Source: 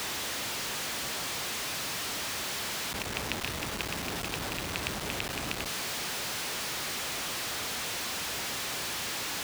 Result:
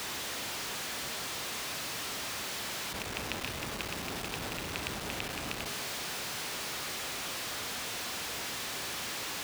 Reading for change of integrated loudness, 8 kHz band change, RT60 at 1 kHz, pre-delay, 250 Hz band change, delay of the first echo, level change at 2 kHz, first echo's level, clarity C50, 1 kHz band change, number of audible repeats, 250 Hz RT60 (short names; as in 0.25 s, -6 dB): -3.0 dB, -3.5 dB, 0.95 s, 29 ms, -2.5 dB, none, -3.0 dB, none, 8.5 dB, -2.5 dB, none, 1.1 s